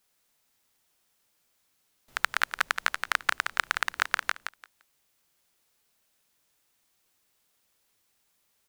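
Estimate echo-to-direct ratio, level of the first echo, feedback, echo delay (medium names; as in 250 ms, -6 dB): -7.0 dB, -7.0 dB, 18%, 172 ms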